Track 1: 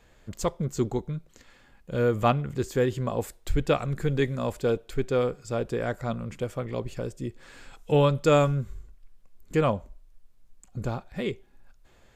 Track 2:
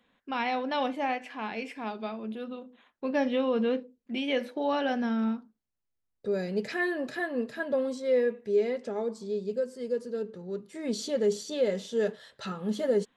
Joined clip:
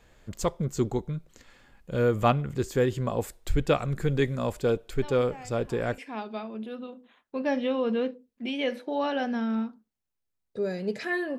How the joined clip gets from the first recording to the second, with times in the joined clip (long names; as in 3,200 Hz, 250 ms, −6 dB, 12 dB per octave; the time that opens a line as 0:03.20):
track 1
0:04.99: mix in track 2 from 0:00.68 0.99 s −14.5 dB
0:05.98: continue with track 2 from 0:01.67